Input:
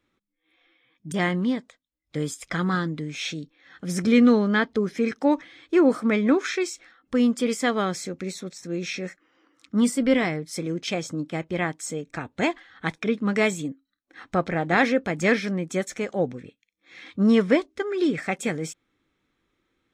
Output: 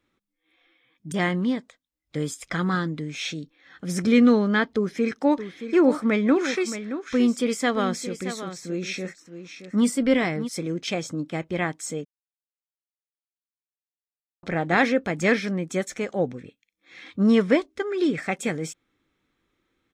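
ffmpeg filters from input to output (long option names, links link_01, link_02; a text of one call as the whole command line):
ffmpeg -i in.wav -filter_complex "[0:a]asplit=3[link_01][link_02][link_03];[link_01]afade=type=out:start_time=5.27:duration=0.02[link_04];[link_02]aecho=1:1:623:0.282,afade=type=in:start_time=5.27:duration=0.02,afade=type=out:start_time=10.47:duration=0.02[link_05];[link_03]afade=type=in:start_time=10.47:duration=0.02[link_06];[link_04][link_05][link_06]amix=inputs=3:normalize=0,asplit=3[link_07][link_08][link_09];[link_07]atrim=end=12.05,asetpts=PTS-STARTPTS,afade=type=out:start_time=12.046:duration=0.004:curve=hsin[link_10];[link_08]atrim=start=12.05:end=14.43,asetpts=PTS-STARTPTS,volume=0[link_11];[link_09]atrim=start=14.43,asetpts=PTS-STARTPTS,afade=type=in:duration=0.004:curve=hsin[link_12];[link_10][link_11][link_12]concat=n=3:v=0:a=1" out.wav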